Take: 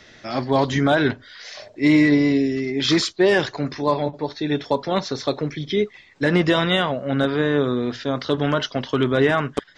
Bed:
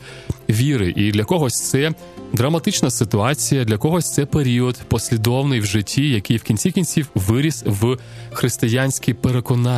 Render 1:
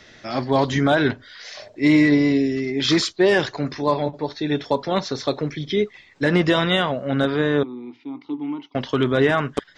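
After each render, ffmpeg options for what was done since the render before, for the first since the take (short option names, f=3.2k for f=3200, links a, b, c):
-filter_complex "[0:a]asettb=1/sr,asplit=3[a][b][c];[a]atrim=end=7.634[d];[b]atrim=start=7.63:end=8.75,asetpts=PTS-STARTPTS,afade=t=in:d=0.004:c=qsin,afade=t=out:st=1.116:d=0.004:c=qsin,asplit=3[e][f][g];[e]bandpass=f=300:t=q:w=8,volume=0dB[h];[f]bandpass=f=870:t=q:w=8,volume=-6dB[i];[g]bandpass=f=2.24k:t=q:w=8,volume=-9dB[j];[h][i][j]amix=inputs=3:normalize=0[k];[c]atrim=start=8.746[l];[d][k]acrossfade=d=0.004:c1=hsin:c2=qsin[m];[m][l]acrossfade=d=0.004:c1=qsin:c2=hsin"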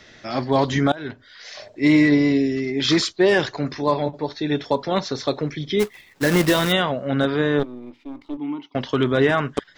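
-filter_complex "[0:a]asplit=3[a][b][c];[a]afade=t=out:st=5.79:d=0.02[d];[b]acrusher=bits=2:mode=log:mix=0:aa=0.000001,afade=t=in:st=5.79:d=0.02,afade=t=out:st=6.71:d=0.02[e];[c]afade=t=in:st=6.71:d=0.02[f];[d][e][f]amix=inputs=3:normalize=0,asettb=1/sr,asplit=3[g][h][i];[g]atrim=end=7.594[j];[h]atrim=start=7.59:end=8.37,asetpts=PTS-STARTPTS,afade=t=in:d=0.004:c=qsin,afade=t=out:st=0.776:d=0.004:c=qsin,aeval=exprs='if(lt(val(0),0),0.447*val(0),val(0))':c=same[k];[i]atrim=start=8.366[l];[j][k]acrossfade=d=0.004:c1=hsin:c2=qsin[m];[m][l]acrossfade=d=0.004:c1=qsin:c2=hsin,asplit=2[n][o];[n]atrim=end=0.92,asetpts=PTS-STARTPTS,afade=t=out:st=0.916:d=0.004:c=hsin:silence=0.0749894[p];[o]atrim=start=0.92,asetpts=PTS-STARTPTS,afade=t=in:d=0.66:silence=0.0749894[q];[p][q]concat=n=2:v=0:a=1"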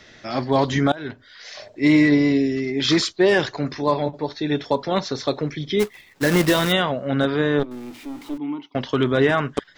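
-filter_complex "[0:a]asettb=1/sr,asplit=3[a][b][c];[a]atrim=end=7.714[d];[b]atrim=start=7.71:end=8.38,asetpts=PTS-STARTPTS,afade=t=in:d=0.004:c=qsin,afade=t=out:st=0.666:d=0.004:c=qsin,aeval=exprs='val(0)+0.5*0.0126*sgn(val(0))':c=same[e];[c]atrim=start=8.376[f];[d][e]acrossfade=d=0.004:c1=hsin:c2=qsin[g];[g][f]acrossfade=d=0.004:c1=qsin:c2=hsin"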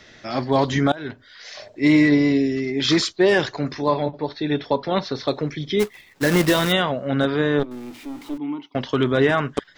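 -filter_complex "[0:a]asettb=1/sr,asplit=3[a][b][c];[a]atrim=end=3.884[d];[b]atrim=start=3.88:end=5.28,asetpts=PTS-STARTPTS,afade=t=in:d=0.004:c=qsin,afade=t=out:st=1.396:d=0.004:c=qsin,lowpass=f=4.9k:w=0.5412,lowpass=f=4.9k:w=1.3066[e];[c]atrim=start=5.276[f];[d][e]acrossfade=d=0.004:c1=hsin:c2=qsin[g];[g][f]acrossfade=d=0.004:c1=qsin:c2=hsin"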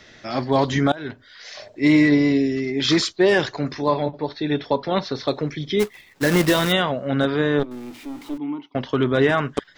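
-filter_complex "[0:a]asettb=1/sr,asplit=3[a][b][c];[a]atrim=end=8.444[d];[b]atrim=start=8.44:end=9.14,asetpts=PTS-STARTPTS,afade=t=in:d=0.004:c=qsin,afade=t=out:st=0.696:d=0.004:c=qsin,highshelf=f=3.8k:g=-8[e];[c]atrim=start=9.136[f];[d][e]acrossfade=d=0.004:c1=hsin:c2=qsin[g];[g][f]acrossfade=d=0.004:c1=qsin:c2=hsin"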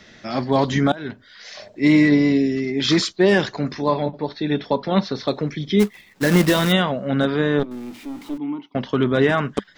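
-af "equalizer=f=200:t=o:w=0.35:g=9.5"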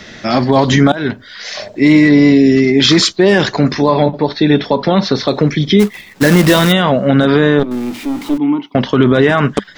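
-af "alimiter=level_in=13dB:limit=-1dB:release=50:level=0:latency=1"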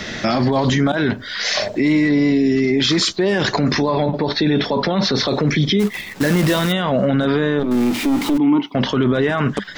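-filter_complex "[0:a]asplit=2[a][b];[b]acompressor=threshold=-19dB:ratio=6,volume=0dB[c];[a][c]amix=inputs=2:normalize=0,alimiter=limit=-9dB:level=0:latency=1:release=23"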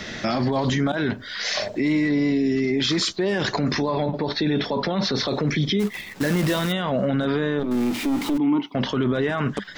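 -af "volume=-5.5dB"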